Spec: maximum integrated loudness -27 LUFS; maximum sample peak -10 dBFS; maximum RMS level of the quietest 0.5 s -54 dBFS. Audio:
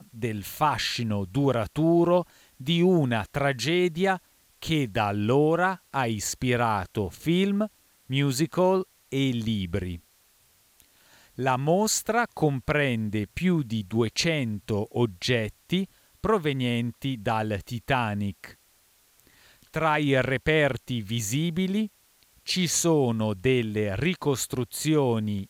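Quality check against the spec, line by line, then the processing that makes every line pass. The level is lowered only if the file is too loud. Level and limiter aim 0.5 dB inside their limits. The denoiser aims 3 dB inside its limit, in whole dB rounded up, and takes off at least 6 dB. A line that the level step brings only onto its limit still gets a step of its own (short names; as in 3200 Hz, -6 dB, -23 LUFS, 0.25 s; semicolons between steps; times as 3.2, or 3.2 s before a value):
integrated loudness -26.0 LUFS: fail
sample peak -11.0 dBFS: OK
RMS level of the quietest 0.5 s -62 dBFS: OK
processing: gain -1.5 dB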